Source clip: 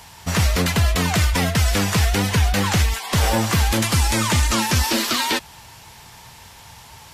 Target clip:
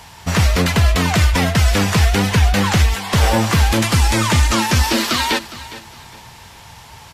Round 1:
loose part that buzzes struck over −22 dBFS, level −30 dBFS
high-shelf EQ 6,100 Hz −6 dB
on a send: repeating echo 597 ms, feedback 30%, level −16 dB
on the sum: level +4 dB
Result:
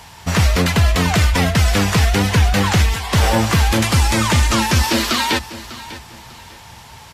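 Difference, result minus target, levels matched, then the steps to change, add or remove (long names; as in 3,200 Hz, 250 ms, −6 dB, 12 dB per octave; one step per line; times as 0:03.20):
echo 187 ms late
change: repeating echo 410 ms, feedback 30%, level −16 dB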